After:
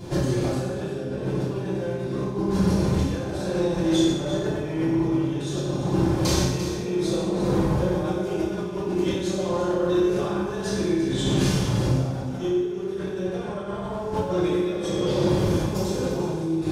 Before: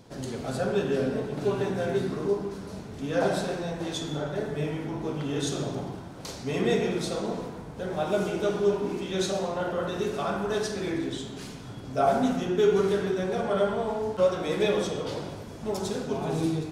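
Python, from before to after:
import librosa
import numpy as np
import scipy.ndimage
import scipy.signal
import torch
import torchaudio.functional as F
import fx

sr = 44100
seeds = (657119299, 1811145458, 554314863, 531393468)

p1 = fx.low_shelf(x, sr, hz=170.0, db=9.0)
p2 = fx.over_compress(p1, sr, threshold_db=-35.0, ratio=-1.0)
p3 = p2 + fx.echo_single(p2, sr, ms=346, db=-11.0, dry=0)
p4 = fx.rev_fdn(p3, sr, rt60_s=0.91, lf_ratio=1.05, hf_ratio=1.0, size_ms=17.0, drr_db=-9.0)
y = p4 * librosa.db_to_amplitude(-2.0)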